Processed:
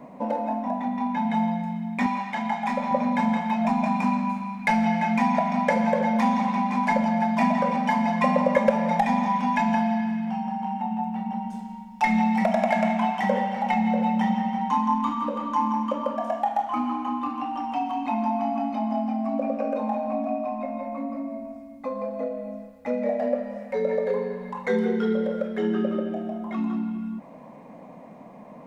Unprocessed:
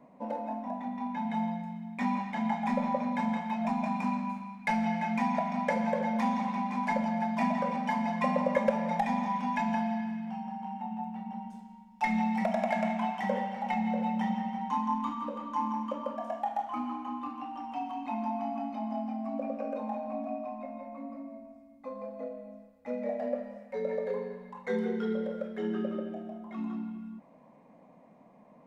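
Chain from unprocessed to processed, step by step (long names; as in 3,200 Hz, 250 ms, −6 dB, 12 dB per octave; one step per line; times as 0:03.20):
in parallel at +2.5 dB: downward compressor, threshold −43 dBFS, peak gain reduction 21 dB
0:02.06–0:02.91: on the sum: low-shelf EQ 410 Hz −9.5 dB
level +5.5 dB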